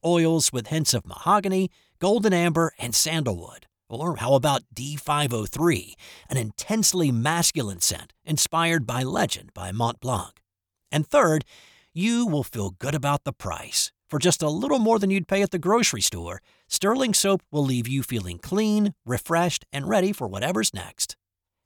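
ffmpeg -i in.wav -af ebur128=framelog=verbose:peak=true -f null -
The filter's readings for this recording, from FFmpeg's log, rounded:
Integrated loudness:
  I:         -23.7 LUFS
  Threshold: -34.0 LUFS
Loudness range:
  LRA:         3.2 LU
  Threshold: -44.1 LUFS
  LRA low:   -25.7 LUFS
  LRA high:  -22.5 LUFS
True peak:
  Peak:       -7.4 dBFS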